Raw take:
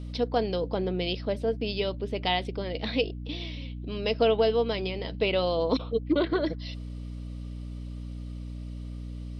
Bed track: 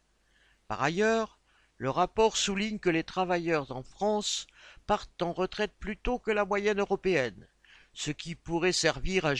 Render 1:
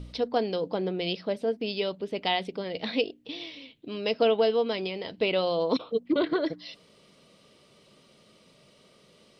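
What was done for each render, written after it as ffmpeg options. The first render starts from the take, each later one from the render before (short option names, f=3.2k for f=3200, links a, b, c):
-af "bandreject=f=60:t=h:w=4,bandreject=f=120:t=h:w=4,bandreject=f=180:t=h:w=4,bandreject=f=240:t=h:w=4,bandreject=f=300:t=h:w=4"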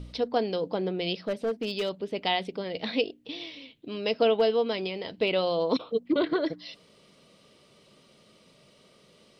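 -filter_complex "[0:a]asettb=1/sr,asplit=3[a][b][c];[a]atrim=end=1.244[d];[b]atrim=start=1.24:end=1.91,asetpts=PTS-STARTPTS,afade=t=in:d=0.004:c=qsin,afade=t=out:st=0.666:d=0.004:c=qsin,asoftclip=type=hard:threshold=-24dB[e];[c]atrim=start=1.906[f];[d][e]acrossfade=d=0.004:c1=hsin:c2=qsin[g];[g][f]acrossfade=d=0.004:c1=qsin:c2=hsin,asettb=1/sr,asplit=3[h][i][j];[h]atrim=end=4.344[k];[i]atrim=start=4.34:end=5.32,asetpts=PTS-STARTPTS,afade=t=in:d=0.004:c=qsin,afade=t=out:st=0.976:d=0.004:c=qsin,asoftclip=type=hard:threshold=-16dB[l];[j]atrim=start=5.316[m];[k][l]acrossfade=d=0.004:c1=hsin:c2=qsin[n];[n][m]acrossfade=d=0.004:c1=qsin:c2=hsin"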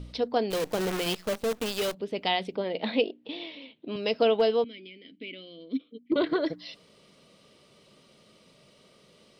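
-filter_complex "[0:a]asplit=3[a][b][c];[a]afade=t=out:st=0.5:d=0.02[d];[b]acrusher=bits=6:dc=4:mix=0:aa=0.000001,afade=t=in:st=0.5:d=0.02,afade=t=out:st=1.93:d=0.02[e];[c]afade=t=in:st=1.93:d=0.02[f];[d][e][f]amix=inputs=3:normalize=0,asettb=1/sr,asplit=3[g][h][i];[g]atrim=end=2.554[j];[h]atrim=start=2.55:end=3.96,asetpts=PTS-STARTPTS,afade=t=in:d=0.004:c=qsin,afade=t=out:st=1.406:d=0.004:c=qsin,highpass=180,equalizer=f=220:t=q:w=4:g=5,equalizer=f=370:t=q:w=4:g=3,equalizer=f=600:t=q:w=4:g=5,equalizer=f=890:t=q:w=4:g=5,lowpass=f=4.1k:w=0.5412,lowpass=f=4.1k:w=1.3066[k];[i]atrim=start=3.956[l];[j][k]acrossfade=d=0.004:c1=hsin:c2=qsin[m];[m][l]acrossfade=d=0.004:c1=qsin:c2=hsin,asettb=1/sr,asplit=3[n][o][p];[n]atrim=end=4.644[q];[o]atrim=start=4.64:end=6.12,asetpts=PTS-STARTPTS,afade=t=in:d=0.004:c=qsin,afade=t=out:st=1.476:d=0.004:c=qsin,asplit=3[r][s][t];[r]bandpass=f=270:t=q:w=8,volume=0dB[u];[s]bandpass=f=2.29k:t=q:w=8,volume=-6dB[v];[t]bandpass=f=3.01k:t=q:w=8,volume=-9dB[w];[u][v][w]amix=inputs=3:normalize=0[x];[p]atrim=start=6.116[y];[q][x]acrossfade=d=0.004:c1=hsin:c2=qsin[z];[z][y]acrossfade=d=0.004:c1=qsin:c2=hsin"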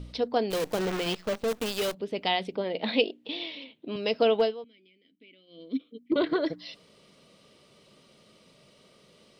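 -filter_complex "[0:a]asettb=1/sr,asplit=3[a][b][c];[a]atrim=end=0.794[d];[b]atrim=start=0.79:end=1.48,asetpts=PTS-STARTPTS,afade=t=in:d=0.004:c=qsin,afade=t=out:st=0.686:d=0.004:c=qsin,equalizer=f=13k:t=o:w=1.1:g=-11[e];[c]atrim=start=1.476[f];[d][e]acrossfade=d=0.004:c1=hsin:c2=qsin[g];[g][f]acrossfade=d=0.004:c1=qsin:c2=hsin,asettb=1/sr,asplit=3[h][i][j];[h]atrim=end=2.884[k];[i]atrim=start=2.88:end=3.64,asetpts=PTS-STARTPTS,afade=t=in:d=0.004:c=qsin,afade=t=out:st=0.756:d=0.004:c=qsin,equalizer=f=5k:w=0.51:g=6[l];[j]atrim=start=3.636[m];[k][l]acrossfade=d=0.004:c1=hsin:c2=qsin[n];[n][m]acrossfade=d=0.004:c1=qsin:c2=hsin,asplit=3[o][p][q];[o]atrim=end=4.55,asetpts=PTS-STARTPTS,afade=t=out:st=4.42:d=0.13:silence=0.177828[r];[p]atrim=start=4.55:end=5.47,asetpts=PTS-STARTPTS,volume=-15dB[s];[q]atrim=start=5.47,asetpts=PTS-STARTPTS,afade=t=in:d=0.13:silence=0.177828[t];[r][s][t]concat=n=3:v=0:a=1"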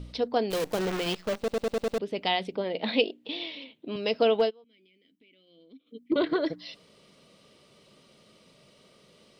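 -filter_complex "[0:a]asplit=3[a][b][c];[a]afade=t=out:st=4.49:d=0.02[d];[b]acompressor=threshold=-59dB:ratio=2.5:attack=3.2:release=140:knee=1:detection=peak,afade=t=in:st=4.49:d=0.02,afade=t=out:st=5.86:d=0.02[e];[c]afade=t=in:st=5.86:d=0.02[f];[d][e][f]amix=inputs=3:normalize=0,asplit=7[g][h][i][j][k][l][m];[g]atrim=end=1.482[n];[h]atrim=start=1.378:end=1.482[o];[i]atrim=start=1.378:end=1.482[p];[j]atrim=start=1.378:end=1.482[q];[k]atrim=start=1.378:end=1.482[r];[l]atrim=start=1.378:end=1.482[s];[m]atrim=start=1.978[t];[n][o]acrossfade=d=0.004:c1=hsin:c2=hsin[u];[u][p]acrossfade=d=0.004:c1=hsin:c2=hsin[v];[v][q]acrossfade=d=0.004:c1=hsin:c2=hsin[w];[w][r]acrossfade=d=0.004:c1=hsin:c2=hsin[x];[x][s]acrossfade=d=0.004:c1=hsin:c2=hsin[y];[y][t]acrossfade=d=0.004:c1=hsin:c2=hsin"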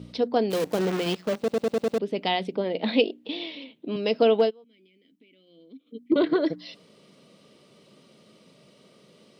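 -af "highpass=180,lowshelf=f=340:g=10"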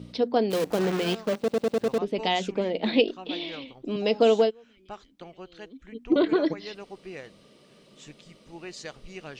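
-filter_complex "[1:a]volume=-13.5dB[a];[0:a][a]amix=inputs=2:normalize=0"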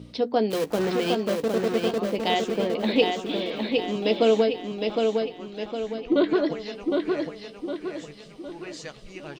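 -filter_complex "[0:a]asplit=2[a][b];[b]adelay=14,volume=-10.5dB[c];[a][c]amix=inputs=2:normalize=0,asplit=2[d][e];[e]aecho=0:1:760|1520|2280|3040|3800|4560:0.631|0.284|0.128|0.0575|0.0259|0.0116[f];[d][f]amix=inputs=2:normalize=0"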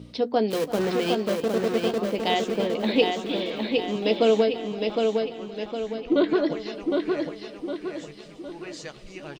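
-af "aecho=1:1:335:0.141"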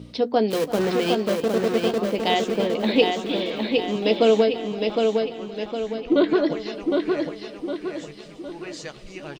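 -af "volume=2.5dB"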